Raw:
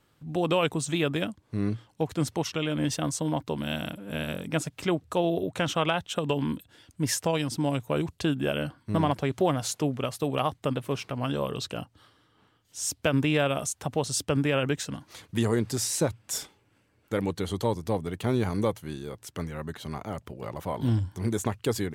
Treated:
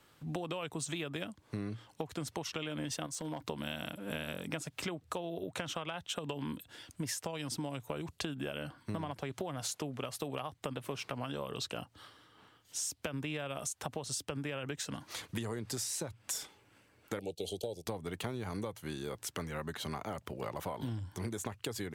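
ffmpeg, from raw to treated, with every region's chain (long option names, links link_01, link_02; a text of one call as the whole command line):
ffmpeg -i in.wav -filter_complex "[0:a]asettb=1/sr,asplit=3[link_01][link_02][link_03];[link_01]atrim=end=3.064[link_04];[link_02]atrim=start=3.06:end=3.47,asetpts=PTS-STARTPTS,afade=type=in:duration=0.004:curve=qsin,afade=type=out:start_time=0.406:duration=0.004:curve=qsin,acompressor=threshold=-32dB:ratio=16:attack=3.2:release=140:knee=1:detection=peak,asoftclip=type=hard:threshold=-30dB[link_05];[link_03]atrim=start=3.466[link_06];[link_04][link_05]acrossfade=duration=0.004:curve1=hsin:curve2=qsin[link_07];[link_07][link_06]acrossfade=duration=0.004:curve1=qsin:curve2=hsin,asettb=1/sr,asplit=3[link_08][link_09][link_10];[link_08]atrim=end=17.194[link_11];[link_09]atrim=start=17.19:end=17.87,asetpts=PTS-STARTPTS,afade=type=in:duration=0.004:curve=qsin,afade=type=out:start_time=0.676:duration=0.004:curve=qsin,agate=range=-10dB:threshold=-37dB:ratio=16:release=100:detection=peak,asuperstop=centerf=1400:order=12:qfactor=0.79,lowshelf=frequency=340:width_type=q:width=1.5:gain=-6.5[link_12];[link_10]atrim=start=17.866[link_13];[link_11][link_12]acrossfade=duration=0.004:curve1=hsin:curve2=qsin[link_14];[link_14][link_13]acrossfade=duration=0.004:curve1=qsin:curve2=hsin,acrossover=split=150[link_15][link_16];[link_16]acompressor=threshold=-27dB:ratio=6[link_17];[link_15][link_17]amix=inputs=2:normalize=0,lowshelf=frequency=360:gain=-7,acompressor=threshold=-40dB:ratio=6,volume=4.5dB" out.wav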